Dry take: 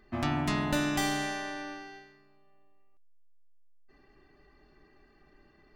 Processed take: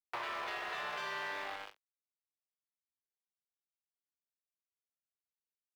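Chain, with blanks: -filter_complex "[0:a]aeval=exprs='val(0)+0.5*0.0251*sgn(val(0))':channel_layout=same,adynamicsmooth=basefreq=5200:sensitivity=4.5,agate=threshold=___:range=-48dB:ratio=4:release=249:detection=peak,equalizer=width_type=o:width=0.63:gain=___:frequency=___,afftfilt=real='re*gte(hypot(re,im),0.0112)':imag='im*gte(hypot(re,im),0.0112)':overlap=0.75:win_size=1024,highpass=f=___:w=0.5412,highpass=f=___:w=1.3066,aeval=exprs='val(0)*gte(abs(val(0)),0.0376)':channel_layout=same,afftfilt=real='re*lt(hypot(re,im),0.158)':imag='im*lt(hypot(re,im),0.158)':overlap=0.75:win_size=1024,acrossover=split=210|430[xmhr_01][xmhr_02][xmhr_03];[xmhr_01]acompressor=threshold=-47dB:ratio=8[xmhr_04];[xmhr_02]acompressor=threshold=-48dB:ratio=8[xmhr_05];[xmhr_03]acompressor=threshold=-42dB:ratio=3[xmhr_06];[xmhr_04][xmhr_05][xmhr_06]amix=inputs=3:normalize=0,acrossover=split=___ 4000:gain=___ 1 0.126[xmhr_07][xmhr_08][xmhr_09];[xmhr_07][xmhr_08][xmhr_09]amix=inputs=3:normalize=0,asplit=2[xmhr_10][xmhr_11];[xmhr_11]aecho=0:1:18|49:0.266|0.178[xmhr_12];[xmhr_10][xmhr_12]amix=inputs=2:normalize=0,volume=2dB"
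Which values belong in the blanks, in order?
-30dB, 12, 850, 100, 100, 470, 0.0891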